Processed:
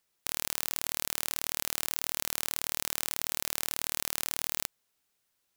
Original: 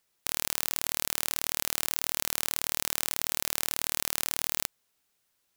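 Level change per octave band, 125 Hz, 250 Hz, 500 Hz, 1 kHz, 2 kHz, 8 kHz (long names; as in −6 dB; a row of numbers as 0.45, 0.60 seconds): −2.5, −2.5, −2.5, −2.5, −2.5, −2.5 decibels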